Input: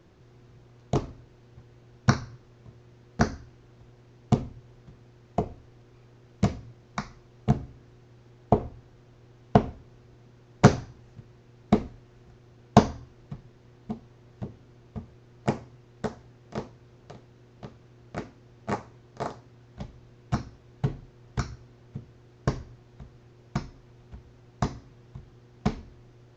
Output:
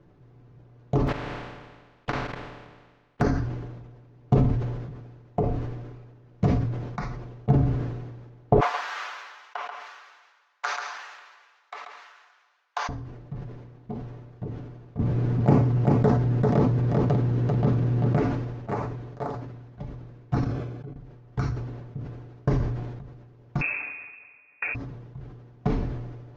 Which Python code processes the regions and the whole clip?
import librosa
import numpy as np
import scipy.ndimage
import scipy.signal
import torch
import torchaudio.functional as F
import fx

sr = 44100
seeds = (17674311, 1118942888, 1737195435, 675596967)

y = fx.spec_flatten(x, sr, power=0.23, at=(1.07, 3.2), fade=0.02)
y = fx.lowpass(y, sr, hz=3000.0, slope=12, at=(1.07, 3.2), fade=0.02)
y = fx.level_steps(y, sr, step_db=24, at=(1.07, 3.2), fade=0.02)
y = fx.chain(y, sr, fx.highpass(hz=1100.0, slope=24),
    fx.echo_single(ms=136, db=-11.5), at=(8.6, 12.89))
y = fx.chain(y, sr, fx.peak_eq(hz=180.0, db=7.0, octaves=2.0),
    fx.echo_single(ms=392, db=-7.5),
    fx.env_flatten(amount_pct=70), at=(14.99, 18.17))
y = fx.chain(y, sr, fx.level_steps(step_db=19),
    fx.notch_comb(f0_hz=940.0), at=(20.44, 20.96))
y = fx.chain(y, sr, fx.freq_invert(carrier_hz=2600),
    fx.highpass(hz=71.0, slope=12),
    fx.peak_eq(hz=170.0, db=-6.0, octaves=0.55), at=(23.61, 24.75))
y = fx.lowpass(y, sr, hz=1100.0, slope=6)
y = y + 0.45 * np.pad(y, (int(6.9 * sr / 1000.0), 0))[:len(y)]
y = fx.sustainer(y, sr, db_per_s=39.0)